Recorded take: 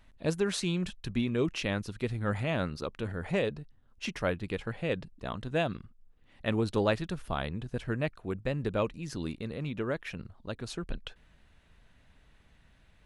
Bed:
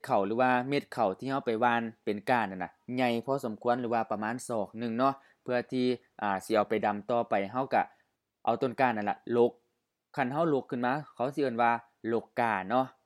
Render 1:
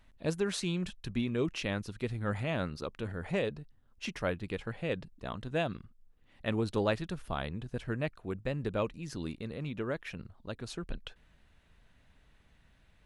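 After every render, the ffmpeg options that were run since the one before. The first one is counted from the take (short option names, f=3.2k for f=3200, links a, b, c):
-af "volume=-2.5dB"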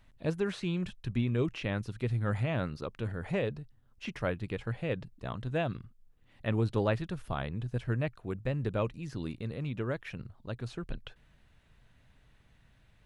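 -filter_complex "[0:a]acrossover=split=3300[a][b];[b]acompressor=threshold=-53dB:ratio=4:attack=1:release=60[c];[a][c]amix=inputs=2:normalize=0,equalizer=f=120:t=o:w=0.43:g=8"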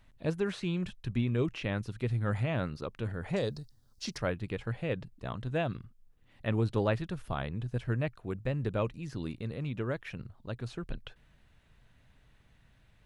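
-filter_complex "[0:a]asettb=1/sr,asplit=3[a][b][c];[a]atrim=end=3.364[d];[b]atrim=start=3.36:end=4.18,asetpts=PTS-STARTPTS,afade=t=in:d=0.004:c=qsin,afade=t=out:st=0.816:d=0.004:c=qsin,highshelf=f=3.5k:t=q:w=3:g=10[e];[c]atrim=start=4.176[f];[d][e]acrossfade=d=0.004:c1=hsin:c2=qsin[g];[g][f]acrossfade=d=0.004:c1=qsin:c2=hsin"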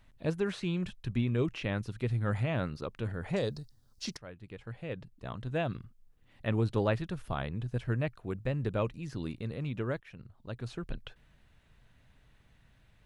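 -filter_complex "[0:a]asplit=3[a][b][c];[a]atrim=end=4.17,asetpts=PTS-STARTPTS,afade=t=out:st=4.166:d=0.004:c=hsin:silence=0.112202[d];[b]atrim=start=4.17:end=10,asetpts=PTS-STARTPTS,afade=t=in:d=1.57:silence=0.112202,afade=t=out:st=5.826:d=0.004:c=hsin:silence=0.237137[e];[c]atrim=start=10,asetpts=PTS-STARTPTS,afade=t=in:d=0.71:silence=0.237137[f];[d][e][f]concat=n=3:v=0:a=1"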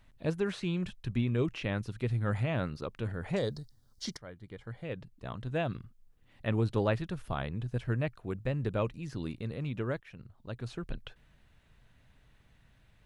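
-filter_complex "[0:a]asettb=1/sr,asplit=3[a][b][c];[a]atrim=end=3.384[d];[b]atrim=start=3.38:end=4.85,asetpts=PTS-STARTPTS,afade=t=in:d=0.004:c=qsin,afade=t=out:st=1.466:d=0.004:c=qsin,asuperstop=centerf=2600:order=4:qfactor=6[e];[c]atrim=start=4.846[f];[d][e]acrossfade=d=0.004:c1=hsin:c2=qsin[g];[g][f]acrossfade=d=0.004:c1=qsin:c2=hsin"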